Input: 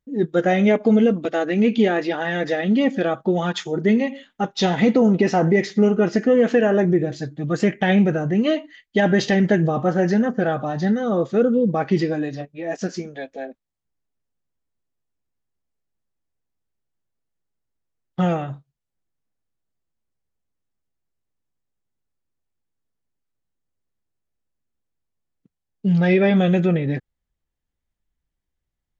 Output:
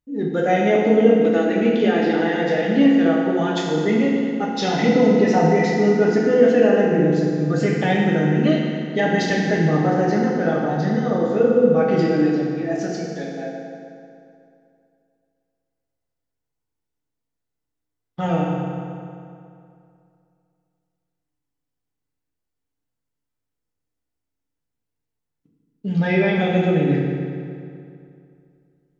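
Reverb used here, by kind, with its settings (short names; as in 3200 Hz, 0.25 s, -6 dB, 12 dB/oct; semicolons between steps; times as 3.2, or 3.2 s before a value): FDN reverb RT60 2.5 s, low-frequency decay 1×, high-frequency decay 0.75×, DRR -3.5 dB; gain -4 dB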